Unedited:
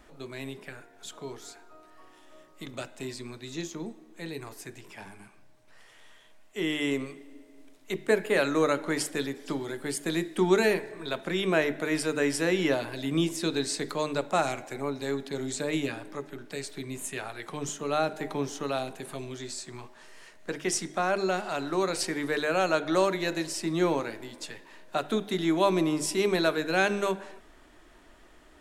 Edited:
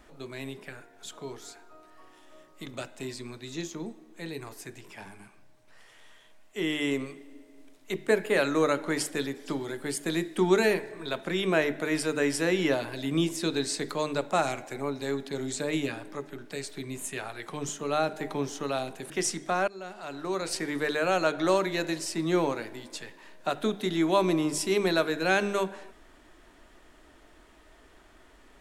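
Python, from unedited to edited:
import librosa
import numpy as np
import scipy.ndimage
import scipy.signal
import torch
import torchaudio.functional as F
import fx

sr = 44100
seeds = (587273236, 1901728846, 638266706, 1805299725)

y = fx.edit(x, sr, fx.cut(start_s=19.1, length_s=1.48),
    fx.fade_in_from(start_s=21.16, length_s=1.08, floor_db=-19.5), tone=tone)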